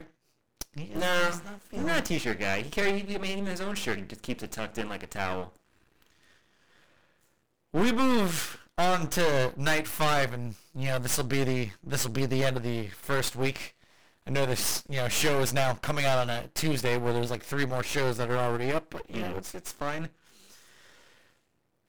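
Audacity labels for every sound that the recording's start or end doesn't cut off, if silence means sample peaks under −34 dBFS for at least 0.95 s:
7.740000	20.070000	sound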